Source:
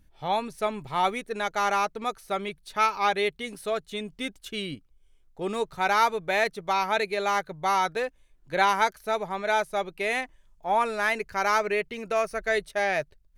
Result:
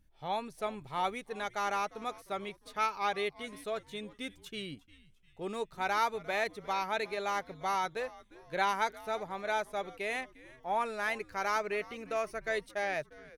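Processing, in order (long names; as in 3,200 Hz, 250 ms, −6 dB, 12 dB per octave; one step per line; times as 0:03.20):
on a send: echo with shifted repeats 351 ms, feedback 43%, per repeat −130 Hz, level −20 dB
on the sum: level −8 dB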